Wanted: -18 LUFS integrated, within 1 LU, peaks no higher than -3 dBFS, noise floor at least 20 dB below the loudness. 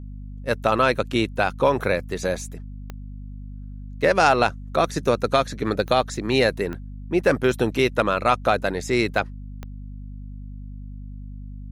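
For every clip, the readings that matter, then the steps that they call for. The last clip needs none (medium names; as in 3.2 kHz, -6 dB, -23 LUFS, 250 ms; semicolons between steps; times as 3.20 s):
clicks found 4; hum 50 Hz; highest harmonic 250 Hz; hum level -33 dBFS; loudness -22.0 LUFS; peak level -4.5 dBFS; loudness target -18.0 LUFS
-> de-click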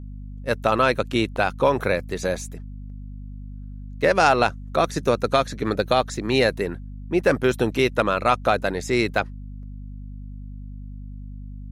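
clicks found 0; hum 50 Hz; highest harmonic 250 Hz; hum level -33 dBFS
-> hum notches 50/100/150/200/250 Hz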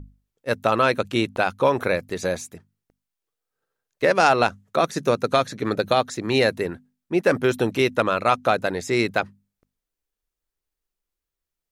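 hum not found; loudness -22.0 LUFS; peak level -5.0 dBFS; loudness target -18.0 LUFS
-> trim +4 dB; peak limiter -3 dBFS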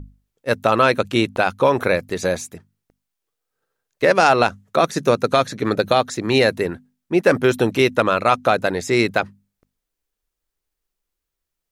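loudness -18.5 LUFS; peak level -3.0 dBFS; noise floor -82 dBFS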